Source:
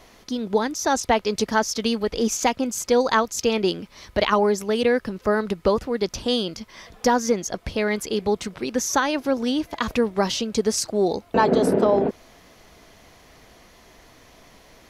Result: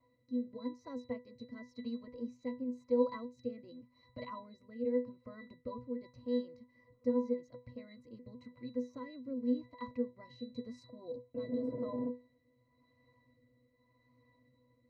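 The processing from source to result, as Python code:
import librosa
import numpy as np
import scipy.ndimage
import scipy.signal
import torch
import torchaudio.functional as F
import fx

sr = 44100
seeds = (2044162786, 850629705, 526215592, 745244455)

y = fx.octave_resonator(x, sr, note='B', decay_s=0.24)
y = fx.rotary(y, sr, hz=0.9)
y = F.gain(torch.from_numpy(y), -3.5).numpy()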